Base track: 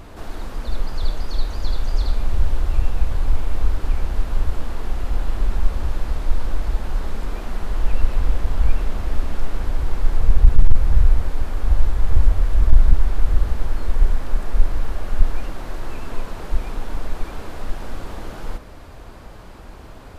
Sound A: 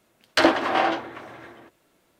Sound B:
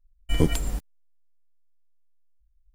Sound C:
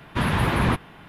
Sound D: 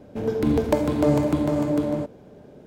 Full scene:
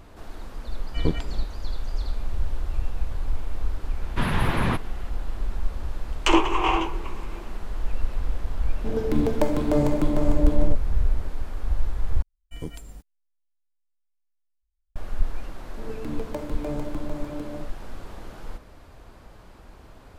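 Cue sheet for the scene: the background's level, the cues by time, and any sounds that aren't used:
base track -8 dB
0.65 add B -3.5 dB + LPF 3500 Hz
4.01 add C -3 dB
5.89 add A -4 dB + ripple EQ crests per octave 0.71, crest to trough 17 dB
8.69 add D -2.5 dB
12.22 replace with B -14 dB
15.62 add D -12 dB

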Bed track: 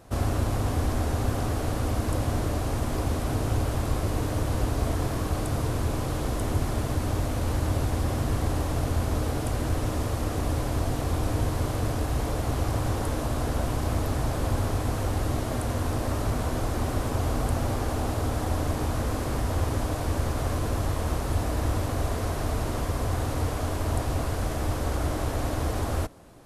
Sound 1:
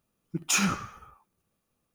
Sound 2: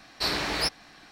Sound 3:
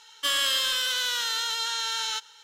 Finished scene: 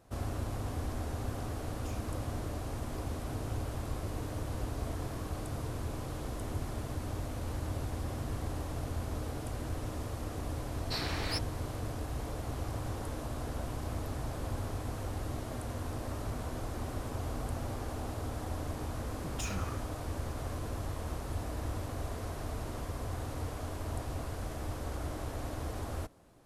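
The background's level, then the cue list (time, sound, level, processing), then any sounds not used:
bed track -10.5 dB
1.36 add 1 -17.5 dB + compressor, threshold -34 dBFS
10.7 add 2 -9.5 dB
18.9 add 1 -6.5 dB + compressor, threshold -31 dBFS
not used: 3

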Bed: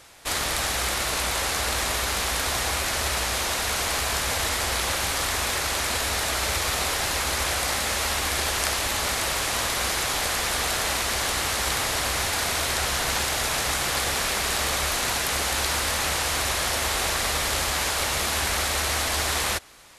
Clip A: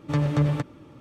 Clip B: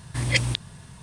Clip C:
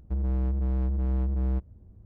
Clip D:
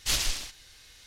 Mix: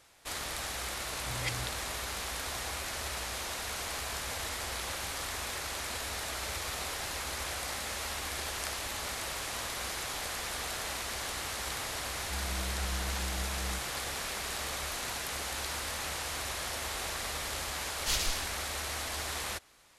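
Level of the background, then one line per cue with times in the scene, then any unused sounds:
bed -11.5 dB
1.12 add B -14.5 dB
12.2 add C -11.5 dB
18 add D -4.5 dB
not used: A

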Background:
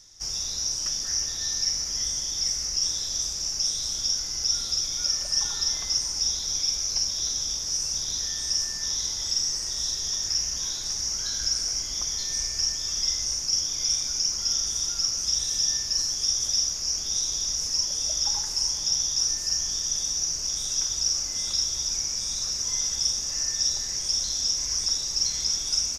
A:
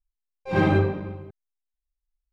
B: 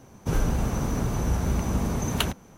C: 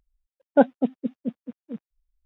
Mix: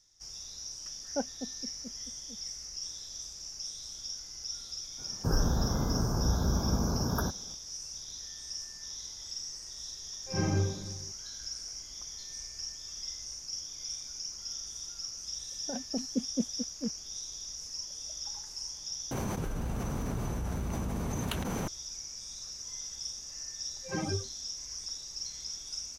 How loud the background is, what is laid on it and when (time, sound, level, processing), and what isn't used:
background -14 dB
0.59 add C -17 dB
4.98 add B -3.5 dB + FFT band-reject 1700–11000 Hz
9.81 add A -14 dB + low shelf 150 Hz +11.5 dB
15.12 add C -5.5 dB + negative-ratio compressor -25 dBFS
19.11 replace with B -14 dB + fast leveller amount 100%
23.36 add A -10.5 dB + per-bin expansion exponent 3

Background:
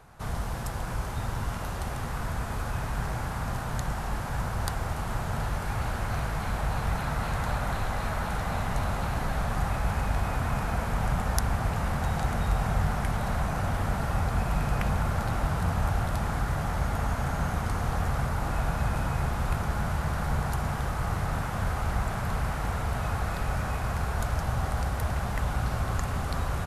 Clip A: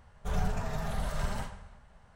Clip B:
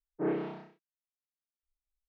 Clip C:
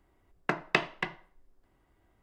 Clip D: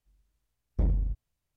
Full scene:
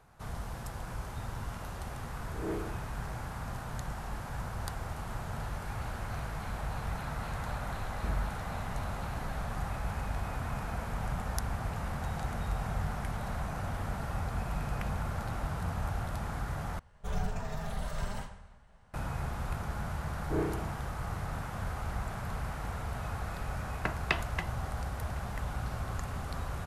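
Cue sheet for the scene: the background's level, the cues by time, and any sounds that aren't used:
background -7.5 dB
2.23 add B -7 dB + spectral swells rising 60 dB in 0.44 s
7.25 add D -8.5 dB
16.79 replace with A -3 dB
20.11 add B -2 dB
23.36 add C -4 dB + bell 380 Hz -4.5 dB

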